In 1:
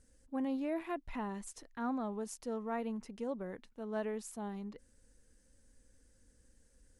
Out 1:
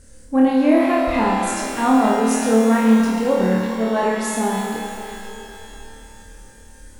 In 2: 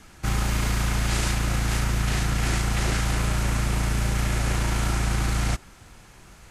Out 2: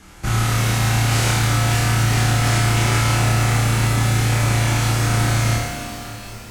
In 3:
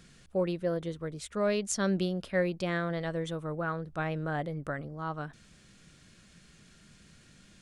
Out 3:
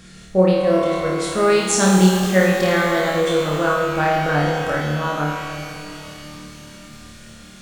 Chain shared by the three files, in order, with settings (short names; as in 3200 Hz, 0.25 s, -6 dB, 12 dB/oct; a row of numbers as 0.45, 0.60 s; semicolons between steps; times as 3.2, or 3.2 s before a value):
flutter echo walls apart 4.6 m, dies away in 0.77 s; shimmer reverb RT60 3.2 s, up +12 st, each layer -8 dB, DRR 4.5 dB; match loudness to -18 LUFS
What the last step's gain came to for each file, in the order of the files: +17.0, +2.0, +10.0 dB